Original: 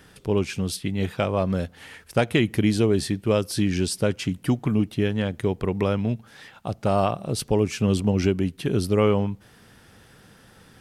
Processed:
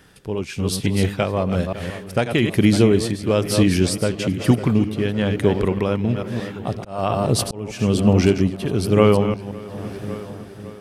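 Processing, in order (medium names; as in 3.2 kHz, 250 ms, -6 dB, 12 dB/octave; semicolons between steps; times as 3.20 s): chunks repeated in reverse 173 ms, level -8 dB; filtered feedback delay 556 ms, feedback 80%, low-pass 4.1 kHz, level -17.5 dB; 6.68–7.79 s: slow attack 373 ms; level rider gain up to 8 dB; tremolo 1.1 Hz, depth 46%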